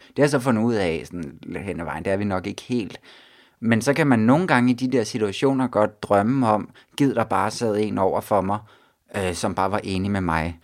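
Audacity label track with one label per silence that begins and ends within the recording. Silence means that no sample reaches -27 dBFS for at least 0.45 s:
2.950000	3.630000	silence
8.570000	9.140000	silence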